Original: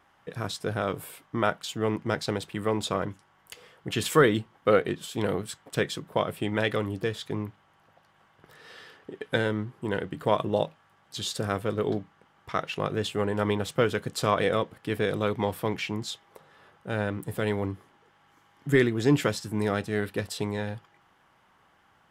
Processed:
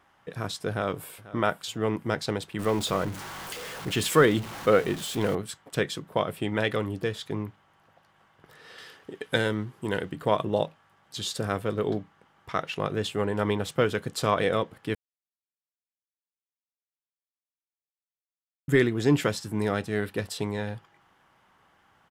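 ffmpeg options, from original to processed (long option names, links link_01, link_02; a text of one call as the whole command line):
ffmpeg -i in.wav -filter_complex "[0:a]asplit=2[link_01][link_02];[link_02]afade=type=in:start_time=0.69:duration=0.01,afade=type=out:start_time=1.23:duration=0.01,aecho=0:1:490|980|1470:0.133352|0.0466733|0.0163356[link_03];[link_01][link_03]amix=inputs=2:normalize=0,asettb=1/sr,asplit=3[link_04][link_05][link_06];[link_04]atrim=end=2.594[link_07];[link_05]atrim=start=2.59:end=5.35,asetpts=PTS-STARTPTS,afade=type=in:duration=0.004:curve=qsin,afade=type=out:start_time=2.756:duration=0.004:curve=qsin,aeval=exprs='val(0)+0.5*0.0211*sgn(val(0))':channel_layout=same[link_08];[link_06]atrim=start=5.346[link_09];[link_07][link_08]acrossfade=duration=0.004:curve1=hsin:curve2=qsin[link_10];[link_10][link_09]acrossfade=duration=0.004:curve1=qsin:curve2=hsin,asettb=1/sr,asplit=3[link_11][link_12][link_13];[link_11]atrim=end=8.784[link_14];[link_12]atrim=start=8.78:end=10.12,asetpts=PTS-STARTPTS,afade=type=in:duration=0.004:curve=qsin,afade=type=out:start_time=1.336:duration=0.004:curve=qsin,highshelf=frequency=3600:gain=8.5[link_15];[link_13]atrim=start=10.116[link_16];[link_14][link_15]acrossfade=duration=0.004:curve1=hsin:curve2=qsin[link_17];[link_17][link_16]acrossfade=duration=0.004:curve1=qsin:curve2=hsin,asplit=3[link_18][link_19][link_20];[link_18]atrim=end=14.95,asetpts=PTS-STARTPTS,afade=type=out:start_time=14.946:duration=0.004:curve=hsin[link_21];[link_19]atrim=start=14.95:end=18.68,asetpts=PTS-STARTPTS,volume=0[link_22];[link_20]atrim=start=18.68,asetpts=PTS-STARTPTS,afade=type=in:duration=0.004:curve=hsin[link_23];[link_21][link_22][link_23]concat=n=3:v=0:a=1" out.wav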